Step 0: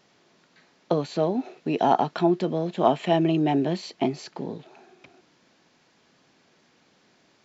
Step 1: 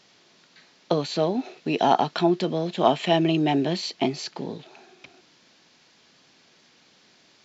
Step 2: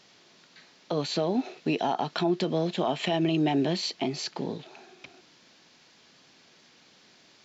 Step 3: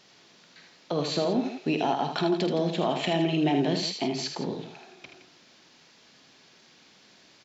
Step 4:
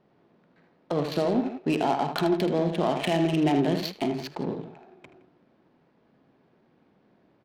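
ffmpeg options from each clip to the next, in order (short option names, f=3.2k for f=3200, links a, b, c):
-af "equalizer=f=4.3k:w=0.6:g=8.5"
-af "alimiter=limit=-17dB:level=0:latency=1:release=110"
-af "aecho=1:1:48|78|166:0.266|0.447|0.237"
-af "adynamicsmooth=sensitivity=4.5:basefreq=760,volume=1.5dB"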